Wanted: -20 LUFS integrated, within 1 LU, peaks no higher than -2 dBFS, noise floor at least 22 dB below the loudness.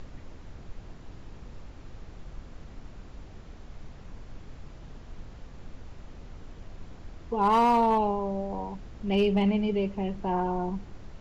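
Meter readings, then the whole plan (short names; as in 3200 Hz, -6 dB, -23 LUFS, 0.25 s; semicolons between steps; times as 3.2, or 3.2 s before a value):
clipped 0.3%; flat tops at -17.0 dBFS; noise floor -47 dBFS; noise floor target -49 dBFS; loudness -27.0 LUFS; peak -17.0 dBFS; loudness target -20.0 LUFS
-> clip repair -17 dBFS; noise print and reduce 6 dB; gain +7 dB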